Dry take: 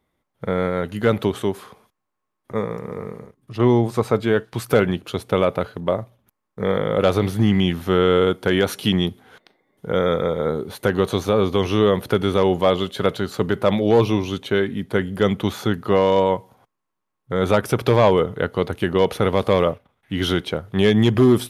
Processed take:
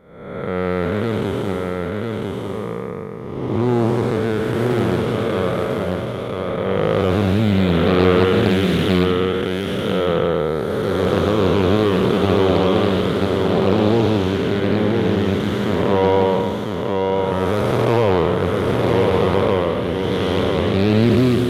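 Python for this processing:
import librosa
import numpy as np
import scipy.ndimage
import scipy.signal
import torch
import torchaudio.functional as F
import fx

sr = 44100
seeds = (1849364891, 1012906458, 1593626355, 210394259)

p1 = fx.spec_blur(x, sr, span_ms=500.0)
p2 = p1 + fx.echo_single(p1, sr, ms=999, db=-3.5, dry=0)
p3 = fx.doppler_dist(p2, sr, depth_ms=0.43)
y = p3 * 10.0 ** (4.5 / 20.0)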